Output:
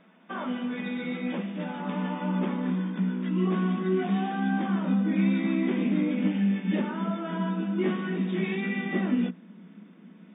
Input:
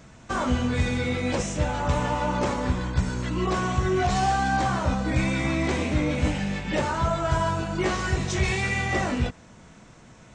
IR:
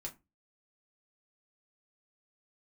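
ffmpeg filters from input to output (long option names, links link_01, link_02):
-filter_complex "[0:a]asplit=2[link_01][link_02];[1:a]atrim=start_sample=2205[link_03];[link_02][link_03]afir=irnorm=-1:irlink=0,volume=-12.5dB[link_04];[link_01][link_04]amix=inputs=2:normalize=0,afftfilt=real='re*between(b*sr/4096,170,3700)':imag='im*between(b*sr/4096,170,3700)':win_size=4096:overlap=0.75,asubboost=boost=8:cutoff=240,volume=-8dB"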